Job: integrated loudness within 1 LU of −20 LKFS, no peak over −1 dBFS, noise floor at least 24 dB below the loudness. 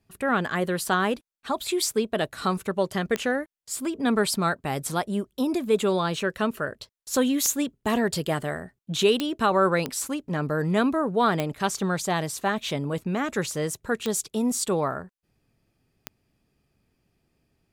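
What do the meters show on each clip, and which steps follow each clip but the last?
number of clicks 7; integrated loudness −26.0 LKFS; sample peak −9.0 dBFS; target loudness −20.0 LKFS
→ click removal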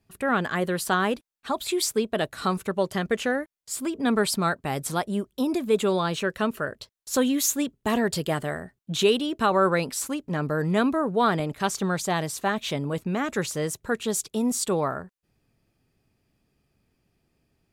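number of clicks 0; integrated loudness −26.0 LKFS; sample peak −10.5 dBFS; target loudness −20.0 LKFS
→ level +6 dB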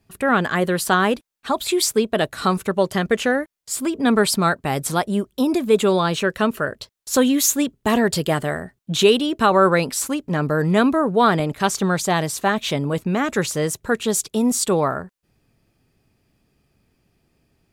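integrated loudness −20.0 LKFS; sample peak −4.5 dBFS; background noise floor −71 dBFS

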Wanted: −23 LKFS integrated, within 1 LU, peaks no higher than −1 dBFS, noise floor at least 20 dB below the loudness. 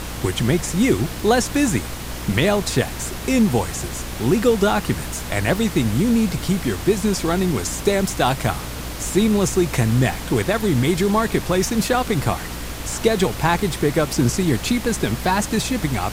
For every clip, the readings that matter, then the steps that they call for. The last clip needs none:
mains hum 60 Hz; hum harmonics up to 300 Hz; level of the hum −32 dBFS; background noise floor −30 dBFS; target noise floor −41 dBFS; integrated loudness −20.5 LKFS; sample peak −4.0 dBFS; target loudness −23.0 LKFS
→ mains-hum notches 60/120/180/240/300 Hz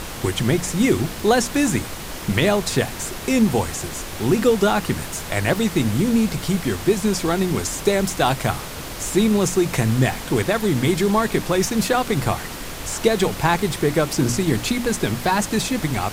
mains hum none found; background noise floor −32 dBFS; target noise floor −41 dBFS
→ noise reduction from a noise print 9 dB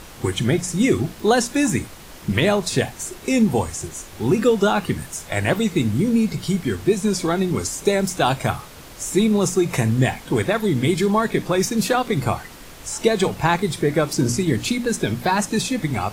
background noise floor −41 dBFS; integrated loudness −21.0 LKFS; sample peak −4.5 dBFS; target loudness −23.0 LKFS
→ level −2 dB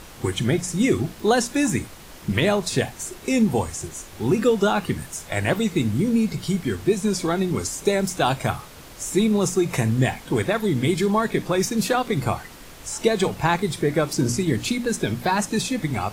integrated loudness −23.0 LKFS; sample peak −6.5 dBFS; background noise floor −43 dBFS

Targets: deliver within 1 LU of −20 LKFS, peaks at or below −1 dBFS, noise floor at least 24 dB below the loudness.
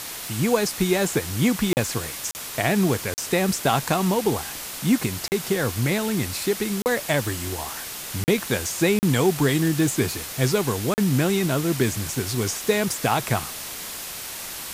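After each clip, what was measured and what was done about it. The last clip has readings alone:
number of dropouts 8; longest dropout 39 ms; background noise floor −35 dBFS; target noise floor −48 dBFS; integrated loudness −23.5 LKFS; sample peak −7.0 dBFS; target loudness −20.0 LKFS
→ repair the gap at 0:01.73/0:02.31/0:03.14/0:05.28/0:06.82/0:08.24/0:08.99/0:10.94, 39 ms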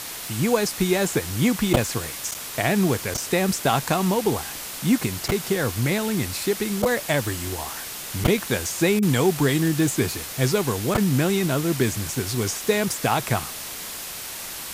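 number of dropouts 0; background noise floor −34 dBFS; target noise floor −48 dBFS
→ broadband denoise 14 dB, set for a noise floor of −34 dBFS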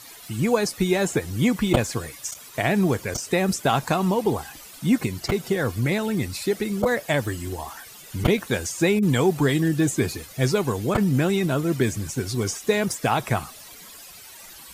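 background noise floor −44 dBFS; target noise floor −48 dBFS
→ broadband denoise 6 dB, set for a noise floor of −44 dBFS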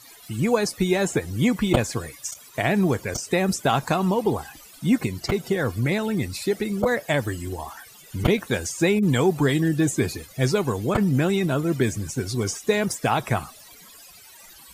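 background noise floor −48 dBFS; integrated loudness −23.5 LKFS; sample peak −3.5 dBFS; target loudness −20.0 LKFS
→ level +3.5 dB
brickwall limiter −1 dBFS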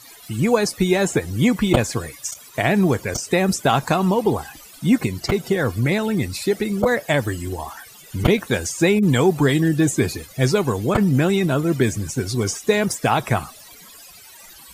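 integrated loudness −20.0 LKFS; sample peak −1.0 dBFS; background noise floor −44 dBFS

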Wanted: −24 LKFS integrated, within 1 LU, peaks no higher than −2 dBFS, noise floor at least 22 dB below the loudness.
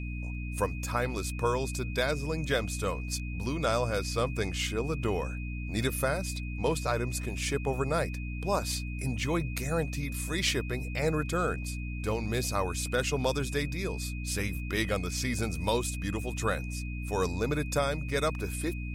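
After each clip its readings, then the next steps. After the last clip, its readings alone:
mains hum 60 Hz; hum harmonics up to 300 Hz; level of the hum −33 dBFS; interfering tone 2,500 Hz; level of the tone −44 dBFS; integrated loudness −31.5 LKFS; sample peak −14.0 dBFS; target loudness −24.0 LKFS
→ hum removal 60 Hz, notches 5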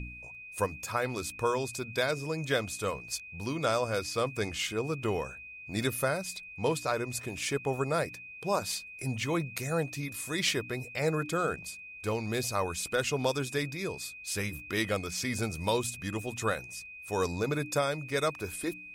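mains hum none found; interfering tone 2,500 Hz; level of the tone −44 dBFS
→ notch filter 2,500 Hz, Q 30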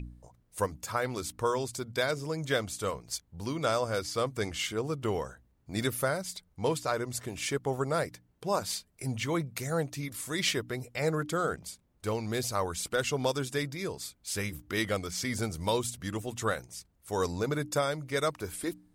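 interfering tone none found; integrated loudness −32.5 LKFS; sample peak −15.0 dBFS; target loudness −24.0 LKFS
→ level +8.5 dB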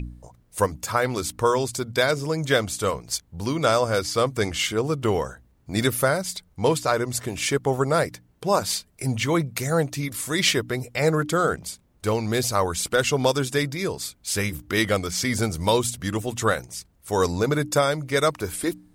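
integrated loudness −24.0 LKFS; sample peak −6.5 dBFS; background noise floor −61 dBFS

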